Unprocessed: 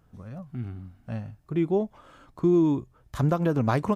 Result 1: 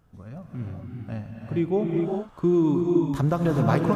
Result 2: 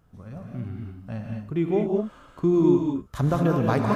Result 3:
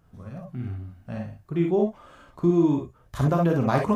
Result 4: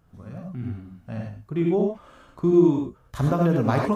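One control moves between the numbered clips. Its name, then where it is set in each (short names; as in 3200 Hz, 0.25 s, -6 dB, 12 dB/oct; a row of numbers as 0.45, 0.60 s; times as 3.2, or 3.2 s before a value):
non-linear reverb, gate: 440, 240, 80, 120 ms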